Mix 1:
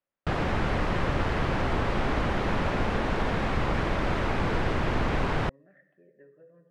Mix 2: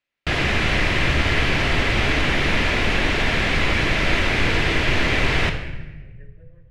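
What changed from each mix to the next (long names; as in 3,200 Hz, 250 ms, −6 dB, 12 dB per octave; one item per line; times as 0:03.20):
background: send on
master: add high shelf with overshoot 1,600 Hz +9.5 dB, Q 1.5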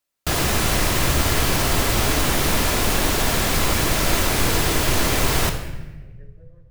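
background: remove low-pass filter 1,900 Hz 12 dB per octave
master: add high shelf with overshoot 1,600 Hz −9.5 dB, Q 1.5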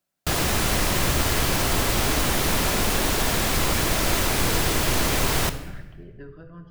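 speech: remove formant resonators in series e
background: send −6.5 dB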